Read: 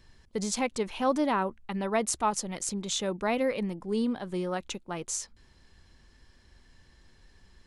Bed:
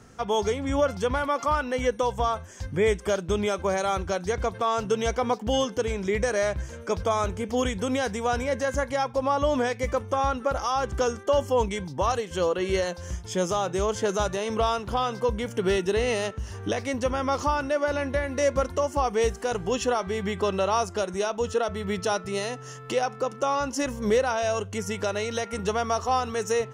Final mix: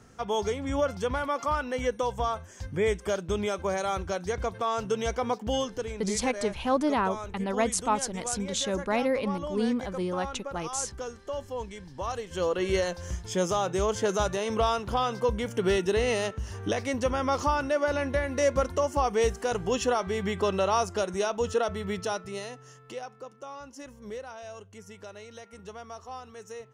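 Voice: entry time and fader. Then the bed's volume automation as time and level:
5.65 s, +1.0 dB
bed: 0:05.52 −3.5 dB
0:06.26 −12 dB
0:11.81 −12 dB
0:12.60 −1 dB
0:21.66 −1 dB
0:23.38 −16.5 dB

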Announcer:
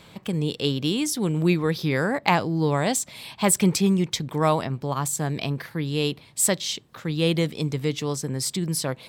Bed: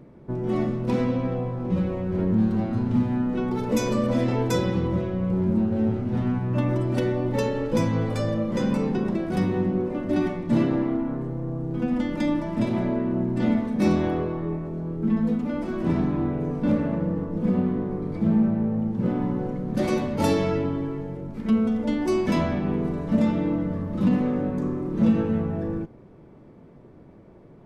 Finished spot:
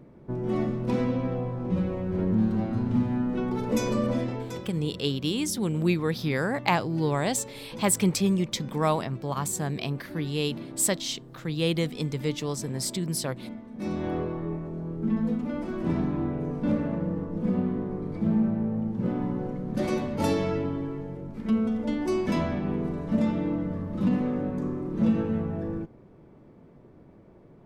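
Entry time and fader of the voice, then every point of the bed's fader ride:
4.40 s, −3.5 dB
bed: 0:04.08 −2.5 dB
0:04.73 −17.5 dB
0:13.64 −17.5 dB
0:14.15 −3.5 dB

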